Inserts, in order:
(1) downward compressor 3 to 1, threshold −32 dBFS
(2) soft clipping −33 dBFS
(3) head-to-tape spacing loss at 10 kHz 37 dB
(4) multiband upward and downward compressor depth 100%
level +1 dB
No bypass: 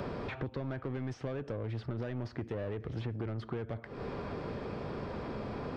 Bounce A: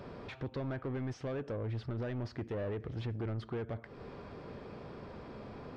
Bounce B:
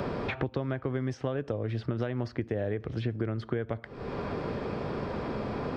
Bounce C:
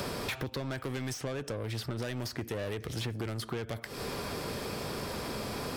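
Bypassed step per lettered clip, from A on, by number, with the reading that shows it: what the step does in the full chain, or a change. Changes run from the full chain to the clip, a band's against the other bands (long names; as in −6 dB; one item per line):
4, change in crest factor −6.5 dB
2, distortion level −8 dB
3, 4 kHz band +13.0 dB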